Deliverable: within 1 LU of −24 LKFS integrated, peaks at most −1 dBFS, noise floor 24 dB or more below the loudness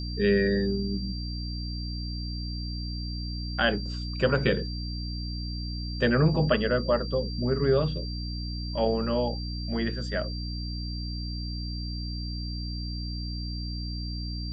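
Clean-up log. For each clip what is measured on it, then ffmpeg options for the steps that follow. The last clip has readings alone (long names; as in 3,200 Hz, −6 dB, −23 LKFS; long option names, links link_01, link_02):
mains hum 60 Hz; hum harmonics up to 300 Hz; level of the hum −31 dBFS; interfering tone 4,700 Hz; level of the tone −39 dBFS; integrated loudness −29.5 LKFS; sample peak −11.0 dBFS; target loudness −24.0 LKFS
→ -af "bandreject=frequency=60:width_type=h:width=6,bandreject=frequency=120:width_type=h:width=6,bandreject=frequency=180:width_type=h:width=6,bandreject=frequency=240:width_type=h:width=6,bandreject=frequency=300:width_type=h:width=6"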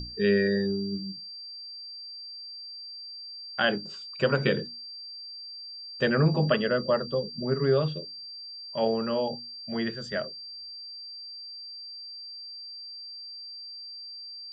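mains hum none found; interfering tone 4,700 Hz; level of the tone −39 dBFS
→ -af "bandreject=frequency=4700:width=30"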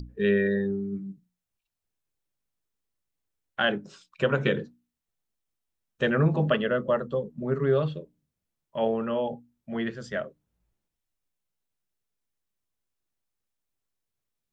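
interfering tone none found; integrated loudness −27.5 LKFS; sample peak −11.0 dBFS; target loudness −24.0 LKFS
→ -af "volume=3.5dB"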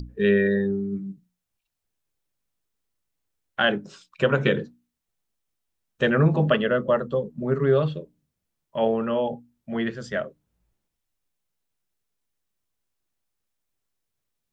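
integrated loudness −24.0 LKFS; sample peak −7.5 dBFS; background noise floor −82 dBFS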